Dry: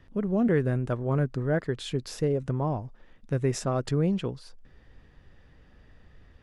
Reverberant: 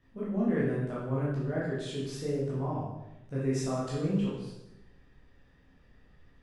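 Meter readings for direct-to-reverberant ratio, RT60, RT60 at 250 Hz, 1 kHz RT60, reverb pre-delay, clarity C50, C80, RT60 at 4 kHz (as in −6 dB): −8.0 dB, 0.90 s, 1.0 s, 0.85 s, 12 ms, 0.5 dB, 4.0 dB, 0.80 s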